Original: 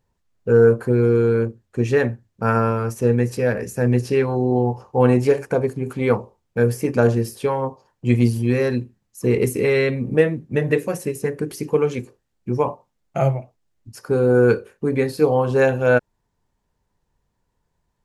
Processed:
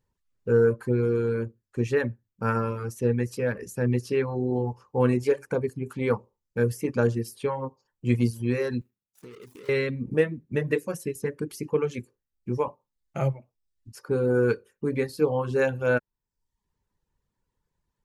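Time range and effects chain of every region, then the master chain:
8.81–9.69 median filter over 41 samples + tilt +3 dB/oct + compressor 4:1, threshold -38 dBFS
whole clip: reverb removal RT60 0.63 s; bell 700 Hz -9 dB 0.29 oct; gain -5.5 dB

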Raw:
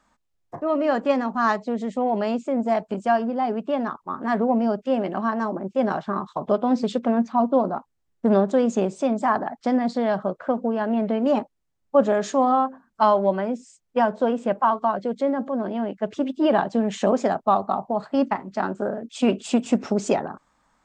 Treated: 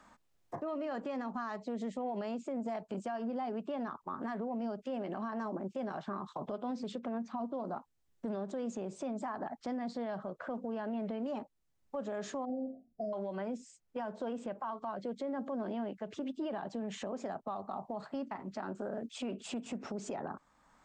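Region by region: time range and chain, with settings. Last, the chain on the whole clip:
12.45–13.13 brick-wall FIR band-stop 750–4600 Hz + air absorption 270 m + doubler 43 ms -9 dB
whole clip: compressor, threshold -24 dBFS; limiter -24 dBFS; three-band squash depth 40%; gain -6.5 dB

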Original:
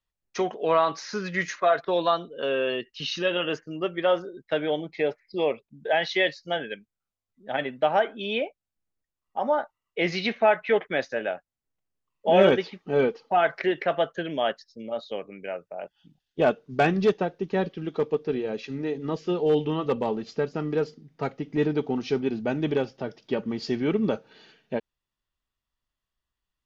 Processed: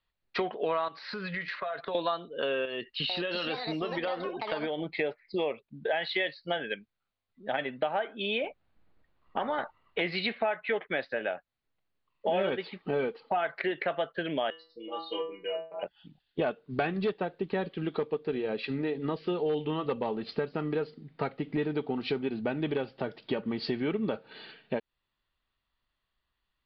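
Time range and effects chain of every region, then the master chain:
0.88–1.95 notch 350 Hz, Q 5.7 + compressor, threshold -37 dBFS
2.65–4.9 compressor, threshold -30 dBFS + echoes that change speed 0.445 s, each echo +6 st, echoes 2, each echo -6 dB
8.44–10.01 LPF 1100 Hz 6 dB/oct + spectral compressor 2:1
14.5–15.83 high shelf 4200 Hz +11 dB + metallic resonator 160 Hz, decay 0.38 s, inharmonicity 0.002 + small resonant body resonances 390/1000/2900 Hz, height 16 dB, ringing for 25 ms
whole clip: elliptic low-pass 4400 Hz, stop band 40 dB; low shelf 480 Hz -3.5 dB; compressor 4:1, threshold -36 dBFS; gain +7 dB

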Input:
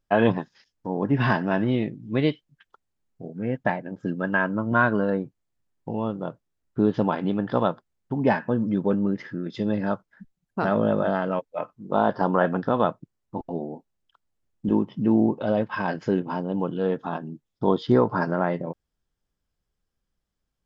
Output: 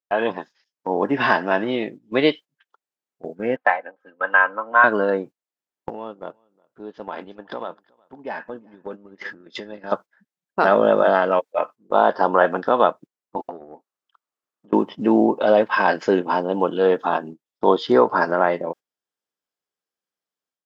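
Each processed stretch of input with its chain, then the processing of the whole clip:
3.56–4.84 three-band isolator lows -22 dB, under 580 Hz, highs -19 dB, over 2800 Hz + comb 3.9 ms, depth 52% + mismatched tape noise reduction decoder only
5.89–9.92 compressor 8:1, threshold -34 dBFS + echo 0.367 s -16 dB
13.49–14.73 compressor 16:1, threshold -35 dBFS + bell 1200 Hz +9 dB 0.54 oct
whole clip: HPF 410 Hz 12 dB/oct; gate -43 dBFS, range -14 dB; AGC gain up to 11 dB

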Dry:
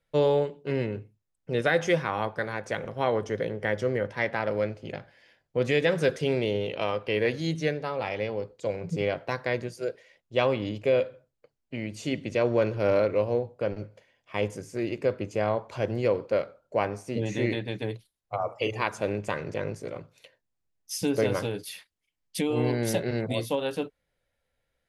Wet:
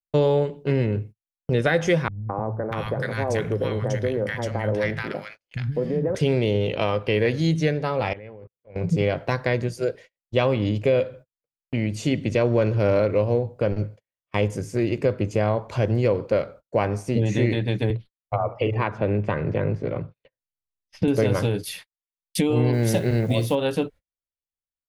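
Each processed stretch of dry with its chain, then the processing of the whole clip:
2.08–6.15 compressor, threshold -25 dBFS + high shelf 8400 Hz +8 dB + three bands offset in time lows, mids, highs 0.21/0.64 s, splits 180/1100 Hz
8.13–8.76 resonant high shelf 3100 Hz -13 dB, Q 1.5 + notches 60/120/180 Hz + level quantiser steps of 24 dB
17.9–21.08 air absorption 340 m + three-band squash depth 40%
22.73–23.55 level-crossing sampler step -49.5 dBFS + flutter echo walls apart 10.3 m, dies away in 0.21 s
whole clip: gate -47 dBFS, range -39 dB; low shelf 170 Hz +11 dB; compressor 2:1, threshold -25 dBFS; gain +6 dB

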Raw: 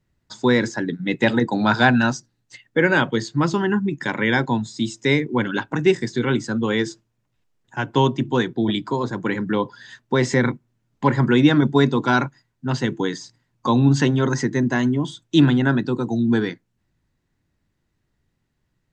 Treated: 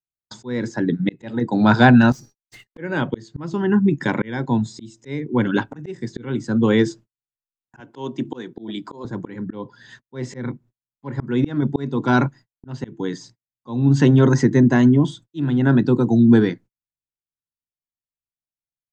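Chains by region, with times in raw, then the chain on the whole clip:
2.12–2.78 compressor 16:1, threshold -38 dBFS + sample leveller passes 5 + resonator 410 Hz, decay 0.59 s, mix 70%
7.8–9.05 HPF 220 Hz + high shelf 4500 Hz +6 dB
whole clip: gate -44 dBFS, range -43 dB; tilt shelf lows +4.5 dB, about 710 Hz; auto swell 0.5 s; gain +3 dB

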